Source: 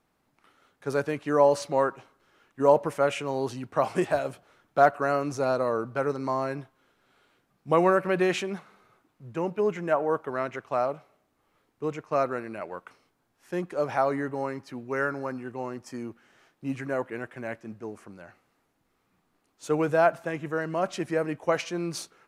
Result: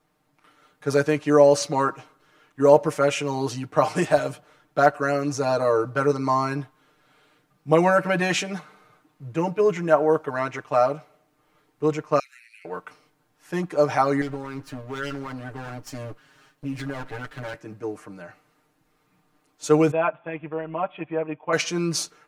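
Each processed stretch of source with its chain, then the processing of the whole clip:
0:12.19–0:12.65: Butterworth high-pass 2,100 Hz 48 dB per octave + downward compressor 2.5 to 1, threshold −52 dBFS
0:14.21–0:17.54: lower of the sound and its delayed copy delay 7.3 ms + downward compressor 3 to 1, threshold −34 dBFS
0:19.91–0:21.53: transient designer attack −1 dB, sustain −6 dB + Chebyshev low-pass with heavy ripple 3,500 Hz, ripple 9 dB
whole clip: comb filter 6.6 ms, depth 93%; dynamic equaliser 5,900 Hz, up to +6 dB, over −51 dBFS, Q 1.2; automatic gain control gain up to 3 dB

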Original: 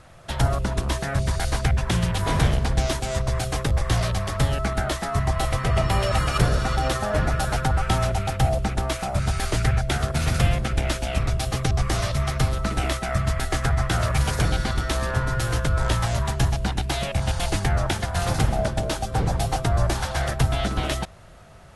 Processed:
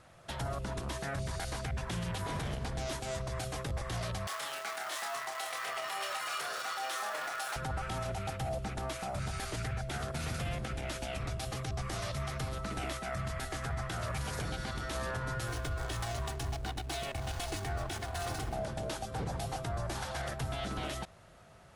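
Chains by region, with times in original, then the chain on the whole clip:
0:04.27–0:07.56: converter with a step at zero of −29.5 dBFS + high-pass filter 870 Hz + double-tracking delay 28 ms −5 dB
0:15.48–0:18.54: high-shelf EQ 4,900 Hz +6.5 dB + comb filter 2.7 ms, depth 52% + slack as between gear wheels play −28.5 dBFS
whole clip: low-shelf EQ 63 Hz −11.5 dB; brickwall limiter −19.5 dBFS; level −8 dB

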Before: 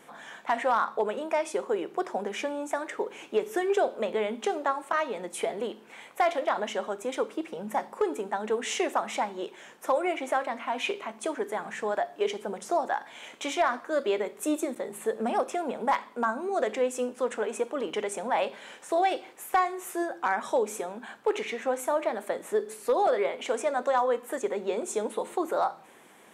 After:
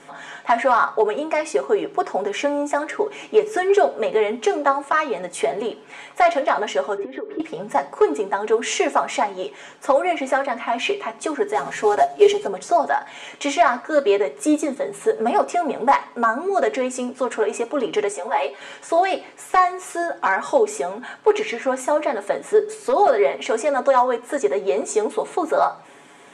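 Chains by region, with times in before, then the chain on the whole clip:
0:06.97–0:07.40: high-frequency loss of the air 360 metres + downward compressor 8 to 1, threshold −42 dBFS + hollow resonant body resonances 370/1,800 Hz, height 17 dB
0:11.54–0:12.47: variable-slope delta modulation 64 kbit/s + comb filter 7.4 ms, depth 79%
0:18.12–0:18.61: high-pass filter 280 Hz 24 dB per octave + string-ensemble chorus
whole clip: low-pass filter 8,900 Hz 24 dB per octave; dynamic equaliser 3,500 Hz, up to −5 dB, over −57 dBFS, Q 6.3; comb filter 7.1 ms, depth 63%; level +7 dB

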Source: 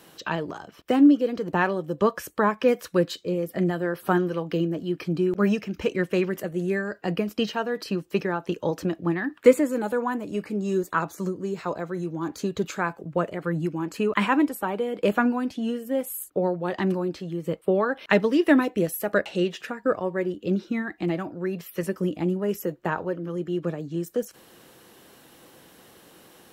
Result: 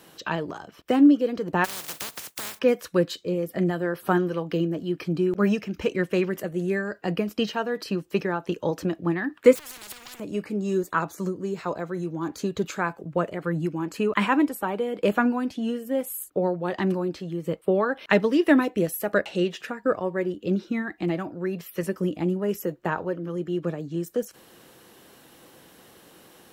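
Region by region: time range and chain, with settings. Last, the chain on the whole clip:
0:01.64–0:02.58: compressing power law on the bin magnitudes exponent 0.12 + high-pass filter 88 Hz + downward compressor 16 to 1, threshold −29 dBFS
0:09.55–0:10.20: downward compressor 10 to 1, threshold −29 dBFS + leveller curve on the samples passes 2 + every bin compressed towards the loudest bin 10 to 1
whole clip: no processing

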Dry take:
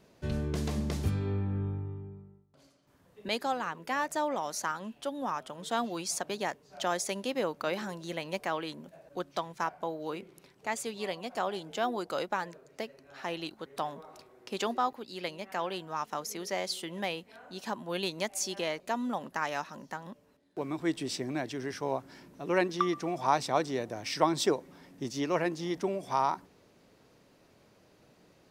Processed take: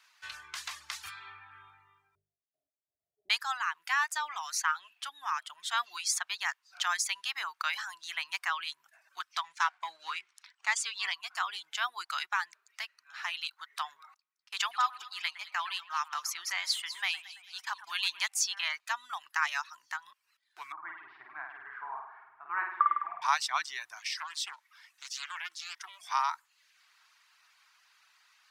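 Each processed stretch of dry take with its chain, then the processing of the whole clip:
0:02.15–0:03.30: leveller curve on the samples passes 1 + Butterworth low-pass 670 Hz 96 dB per octave
0:09.44–0:11.14: low-pass filter 8,800 Hz 24 dB per octave + mains-hum notches 60/120/180/240/300/360/420 Hz + leveller curve on the samples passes 1
0:14.14–0:18.28: noise gate −46 dBFS, range −24 dB + echo with a time of its own for lows and highs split 3,000 Hz, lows 111 ms, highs 201 ms, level −10.5 dB
0:20.72–0:23.22: inverse Chebyshev low-pass filter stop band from 7,600 Hz, stop band 80 dB + flutter between parallel walls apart 8.9 metres, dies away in 1.2 s
0:23.99–0:26.01: high-pass filter 1,200 Hz 6 dB per octave + downward compressor 3 to 1, threshold −37 dBFS + highs frequency-modulated by the lows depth 0.34 ms
whole clip: reverb reduction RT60 0.58 s; inverse Chebyshev high-pass filter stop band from 570 Hz, stop band 40 dB; high-shelf EQ 8,200 Hz −7.5 dB; level +7 dB

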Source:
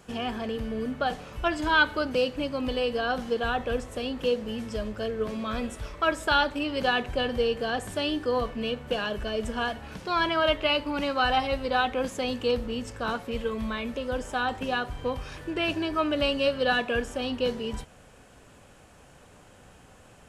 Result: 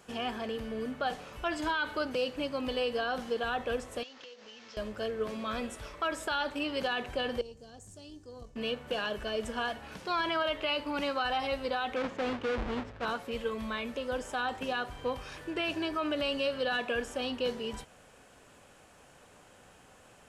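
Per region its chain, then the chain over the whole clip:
0:04.03–0:04.77: variable-slope delta modulation 32 kbit/s + high-pass filter 1,300 Hz 6 dB per octave + downward compressor 8 to 1, threshold −43 dBFS
0:07.41–0:08.56: drawn EQ curve 110 Hz 0 dB, 210 Hz −9 dB, 1,800 Hz −25 dB, 3,500 Hz −19 dB, 6,700 Hz 0 dB, 12,000 Hz −14 dB + tube saturation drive 24 dB, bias 0.6
0:11.96–0:13.05: each half-wave held at its own peak + low-pass filter 2,800 Hz + multiband upward and downward expander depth 70%
whole clip: low-shelf EQ 210 Hz −9 dB; brickwall limiter −20.5 dBFS; level −2 dB

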